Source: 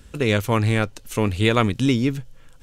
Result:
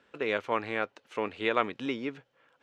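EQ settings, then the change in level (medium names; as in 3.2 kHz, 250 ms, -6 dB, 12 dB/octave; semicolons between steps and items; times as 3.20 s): band-pass 450–2400 Hz; -5.0 dB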